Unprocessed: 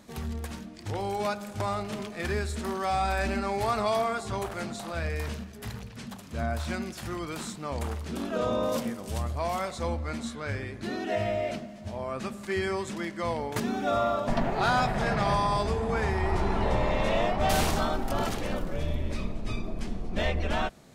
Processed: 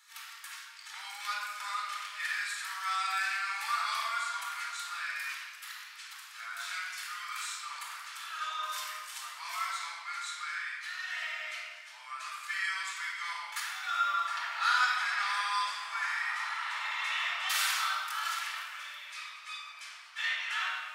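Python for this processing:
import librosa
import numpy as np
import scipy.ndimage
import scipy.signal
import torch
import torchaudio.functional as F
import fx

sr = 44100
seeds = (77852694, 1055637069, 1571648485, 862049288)

y = scipy.signal.sosfilt(scipy.signal.butter(6, 1200.0, 'highpass', fs=sr, output='sos'), x)
y = fx.room_shoebox(y, sr, seeds[0], volume_m3=2100.0, walls='mixed', distance_m=4.2)
y = fx.echo_crushed(y, sr, ms=150, feedback_pct=35, bits=9, wet_db=-15.0, at=(15.02, 17.04))
y = F.gain(torch.from_numpy(y), -3.5).numpy()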